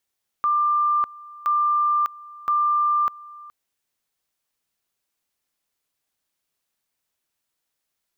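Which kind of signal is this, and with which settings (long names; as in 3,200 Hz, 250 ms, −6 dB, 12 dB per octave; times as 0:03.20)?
tone at two levels in turn 1,190 Hz −17 dBFS, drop 21.5 dB, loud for 0.60 s, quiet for 0.42 s, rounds 3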